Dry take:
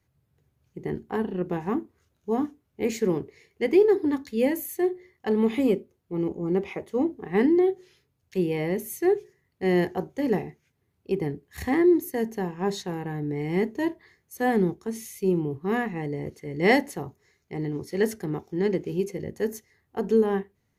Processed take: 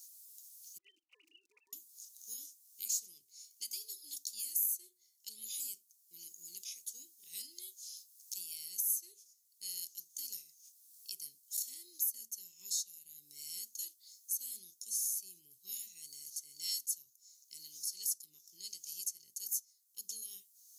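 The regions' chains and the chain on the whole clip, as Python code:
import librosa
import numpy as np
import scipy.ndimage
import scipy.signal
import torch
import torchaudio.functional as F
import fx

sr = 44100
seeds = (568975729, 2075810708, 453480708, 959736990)

y = fx.chain(x, sr, fx.sine_speech(),
    fx.level_steps(step_db=17),
    fx.comb(ms=4.1, depth=0.65), at=(0.78, 1.73))
y = scipy.signal.sosfilt(scipy.signal.cheby2(4, 60, 1800.0, 'highpass', fs=sr, output='sos'), y)
y = fx.band_squash(y, sr, depth_pct=70)
y = y * librosa.db_to_amplitude(11.5)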